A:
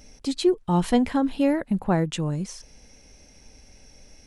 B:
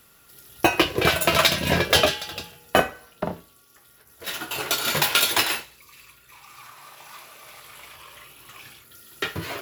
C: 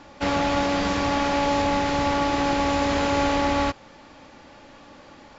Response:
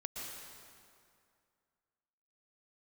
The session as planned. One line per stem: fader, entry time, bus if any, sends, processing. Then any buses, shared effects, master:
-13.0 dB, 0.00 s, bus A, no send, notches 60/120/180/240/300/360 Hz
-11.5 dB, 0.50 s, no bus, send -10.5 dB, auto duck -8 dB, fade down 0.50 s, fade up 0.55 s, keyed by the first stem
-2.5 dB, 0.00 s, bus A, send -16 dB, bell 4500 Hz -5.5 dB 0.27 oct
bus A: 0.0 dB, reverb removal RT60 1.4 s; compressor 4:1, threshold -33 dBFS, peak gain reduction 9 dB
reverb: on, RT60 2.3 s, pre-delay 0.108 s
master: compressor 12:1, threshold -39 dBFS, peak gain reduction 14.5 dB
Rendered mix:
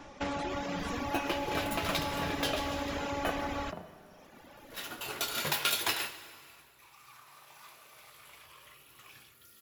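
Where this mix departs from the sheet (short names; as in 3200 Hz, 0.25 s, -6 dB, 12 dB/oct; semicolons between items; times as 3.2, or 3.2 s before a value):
stem C: send off; master: missing compressor 12:1, threshold -39 dBFS, peak gain reduction 14.5 dB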